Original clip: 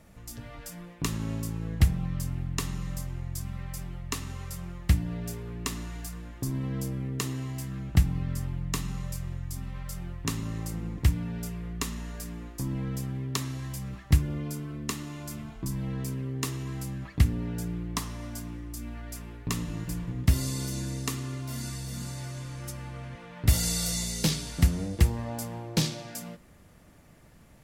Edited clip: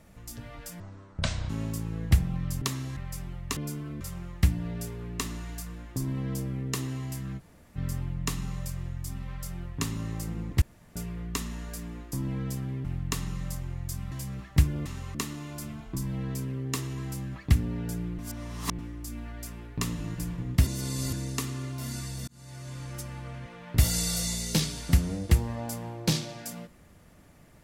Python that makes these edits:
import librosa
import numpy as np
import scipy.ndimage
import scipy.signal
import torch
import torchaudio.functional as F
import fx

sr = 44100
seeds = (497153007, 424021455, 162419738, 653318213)

y = fx.edit(x, sr, fx.speed_span(start_s=0.8, length_s=0.39, speed=0.56),
    fx.swap(start_s=2.31, length_s=1.27, other_s=13.31, other_length_s=0.35),
    fx.swap(start_s=4.18, length_s=0.29, other_s=14.4, other_length_s=0.44),
    fx.room_tone_fill(start_s=7.85, length_s=0.38, crossfade_s=0.04),
    fx.room_tone_fill(start_s=11.08, length_s=0.34),
    fx.reverse_span(start_s=17.88, length_s=0.6),
    fx.reverse_span(start_s=20.36, length_s=0.46),
    fx.fade_in_span(start_s=21.97, length_s=0.53), tone=tone)